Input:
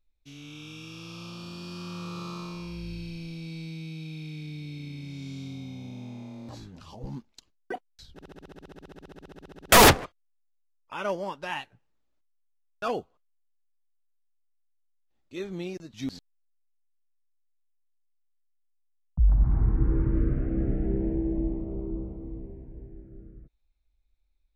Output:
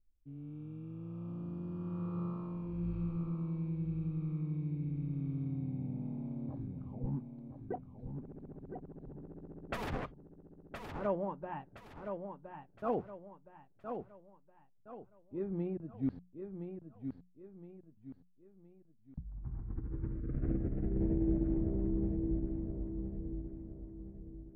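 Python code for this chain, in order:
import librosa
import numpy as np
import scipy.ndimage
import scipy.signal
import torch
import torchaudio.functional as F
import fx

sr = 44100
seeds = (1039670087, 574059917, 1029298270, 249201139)

y = fx.bass_treble(x, sr, bass_db=9, treble_db=-14)
y = fx.env_lowpass(y, sr, base_hz=460.0, full_db=-14.0)
y = fx.over_compress(y, sr, threshold_db=-22.0, ratio=-1.0)
y = fx.low_shelf(y, sr, hz=120.0, db=-6.0)
y = fx.hum_notches(y, sr, base_hz=60, count=3)
y = fx.echo_feedback(y, sr, ms=1017, feedback_pct=37, wet_db=-7.0)
y = y * librosa.db_to_amplitude(-8.5)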